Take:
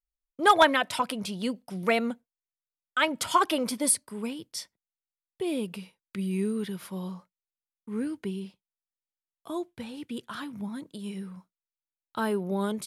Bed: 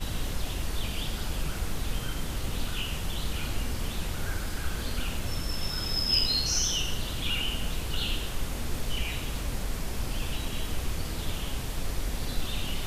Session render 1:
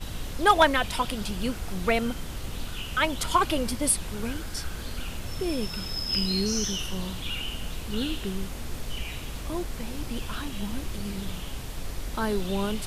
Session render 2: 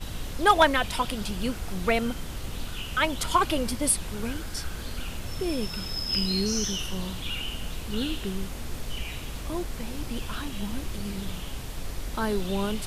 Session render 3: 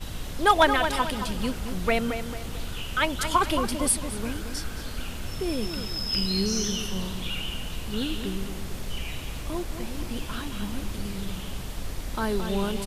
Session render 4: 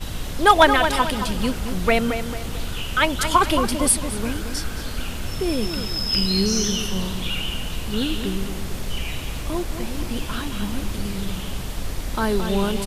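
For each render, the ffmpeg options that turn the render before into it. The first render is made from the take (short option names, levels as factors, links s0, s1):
-filter_complex "[1:a]volume=0.708[s0];[0:a][s0]amix=inputs=2:normalize=0"
-af anull
-filter_complex "[0:a]asplit=2[s0][s1];[s1]adelay=222,lowpass=f=3600:p=1,volume=0.398,asplit=2[s2][s3];[s3]adelay=222,lowpass=f=3600:p=1,volume=0.41,asplit=2[s4][s5];[s5]adelay=222,lowpass=f=3600:p=1,volume=0.41,asplit=2[s6][s7];[s7]adelay=222,lowpass=f=3600:p=1,volume=0.41,asplit=2[s8][s9];[s9]adelay=222,lowpass=f=3600:p=1,volume=0.41[s10];[s0][s2][s4][s6][s8][s10]amix=inputs=6:normalize=0"
-af "volume=1.88"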